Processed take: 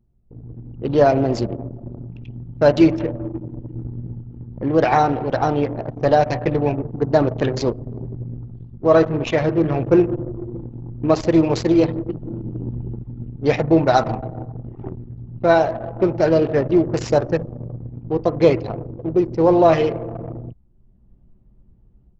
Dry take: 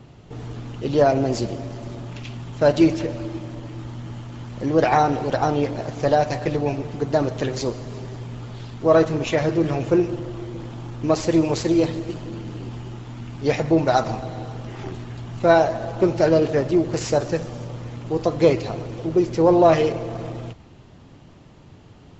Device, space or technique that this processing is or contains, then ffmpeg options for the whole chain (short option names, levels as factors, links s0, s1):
voice memo with heavy noise removal: -af "anlmdn=100,dynaudnorm=f=480:g=3:m=3.76,lowpass=5900,volume=0.841"